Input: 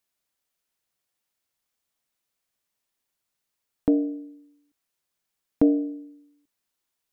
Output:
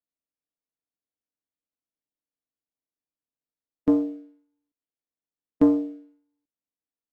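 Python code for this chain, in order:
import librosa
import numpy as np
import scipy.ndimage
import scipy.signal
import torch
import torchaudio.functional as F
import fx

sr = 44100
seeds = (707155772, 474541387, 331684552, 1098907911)

y = fx.bin_compress(x, sr, power=0.6)
y = fx.leveller(y, sr, passes=1)
y = fx.upward_expand(y, sr, threshold_db=-37.0, expansion=2.5)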